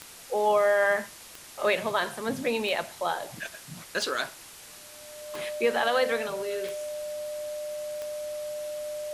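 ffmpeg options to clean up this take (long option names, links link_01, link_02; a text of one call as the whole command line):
ffmpeg -i in.wav -af "adeclick=threshold=4,bandreject=frequency=600:width=30,afwtdn=0.0056" out.wav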